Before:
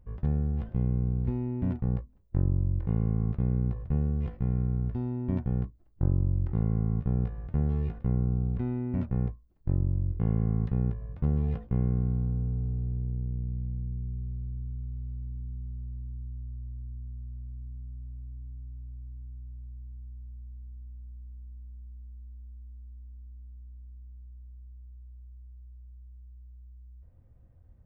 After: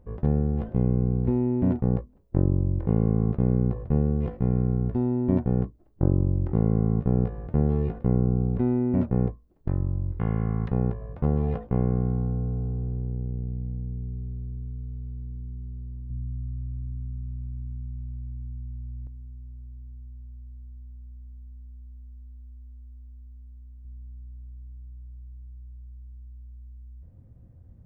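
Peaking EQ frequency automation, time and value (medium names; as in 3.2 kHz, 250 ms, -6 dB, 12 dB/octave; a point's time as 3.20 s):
peaking EQ +11.5 dB 2.8 oct
440 Hz
from 9.68 s 1.6 kHz
from 10.68 s 650 Hz
from 16.10 s 180 Hz
from 19.07 s 580 Hz
from 23.85 s 180 Hz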